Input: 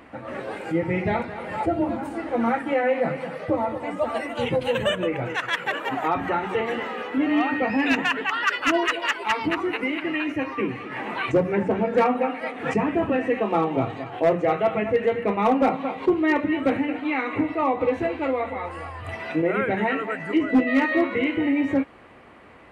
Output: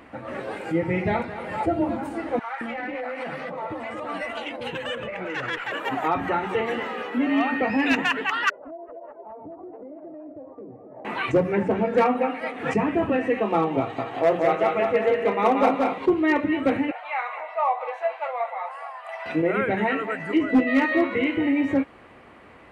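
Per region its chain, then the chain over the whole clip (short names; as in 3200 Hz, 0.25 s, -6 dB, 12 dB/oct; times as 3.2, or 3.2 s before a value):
2.39–5.72 compressor 4:1, threshold -29 dBFS + overdrive pedal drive 11 dB, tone 3600 Hz, clips at -16 dBFS + bands offset in time highs, lows 0.22 s, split 660 Hz
7.07–7.61 HPF 190 Hz + frequency shift -18 Hz
8.5–11.05 ladder low-pass 680 Hz, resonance 75% + compressor, threshold -36 dBFS
13.8–15.98 tone controls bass -8 dB, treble +1 dB + feedback echo 0.181 s, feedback 38%, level -3 dB
16.91–19.26 steep high-pass 630 Hz 48 dB/oct + tilt shelf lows +7 dB, about 1200 Hz
whole clip: dry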